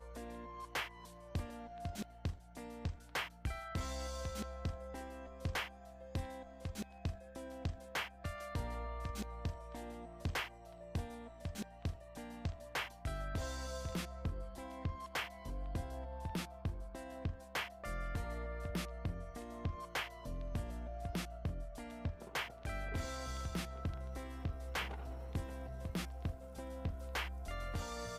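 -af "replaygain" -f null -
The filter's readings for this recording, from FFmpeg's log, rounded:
track_gain = +23.2 dB
track_peak = 0.026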